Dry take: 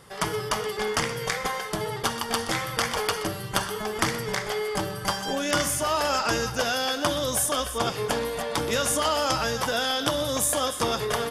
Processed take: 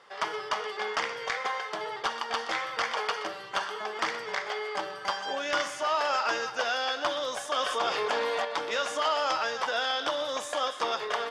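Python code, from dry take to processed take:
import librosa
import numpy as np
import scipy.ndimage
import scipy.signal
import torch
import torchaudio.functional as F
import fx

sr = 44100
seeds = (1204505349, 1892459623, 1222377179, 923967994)

y = scipy.signal.sosfilt(scipy.signal.butter(2, 600.0, 'highpass', fs=sr, output='sos'), x)
y = np.clip(10.0 ** (17.0 / 20.0) * y, -1.0, 1.0) / 10.0 ** (17.0 / 20.0)
y = fx.air_absorb(y, sr, metres=150.0)
y = fx.env_flatten(y, sr, amount_pct=70, at=(7.56, 8.45))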